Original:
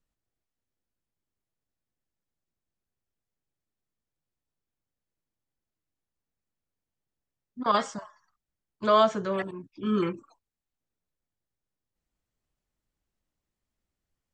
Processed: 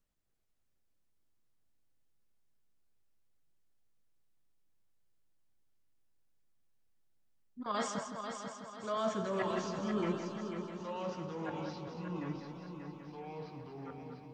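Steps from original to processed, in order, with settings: reverse; compression 6:1, threshold -33 dBFS, peak gain reduction 16 dB; reverse; flange 1.1 Hz, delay 4.3 ms, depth 5.4 ms, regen +79%; multi-head delay 164 ms, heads first and third, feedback 63%, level -8 dB; ever faster or slower copies 291 ms, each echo -3 st, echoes 2, each echo -6 dB; trim +4 dB

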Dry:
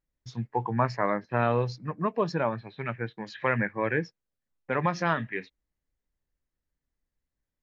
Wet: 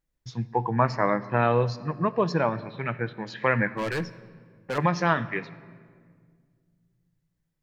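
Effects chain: 3.74–4.78 s: hard clipper -28.5 dBFS, distortion -15 dB; on a send: reverberation RT60 1.9 s, pre-delay 6 ms, DRR 13.5 dB; on the sum: trim +3 dB

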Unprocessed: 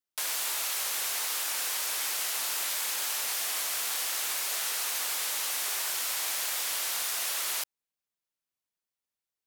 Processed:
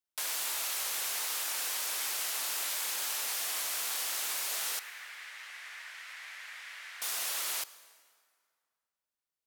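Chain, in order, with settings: 4.79–7.02 s: band-pass filter 1.9 kHz, Q 2.8; reverberation RT60 2.1 s, pre-delay 63 ms, DRR 17 dB; trim -3 dB

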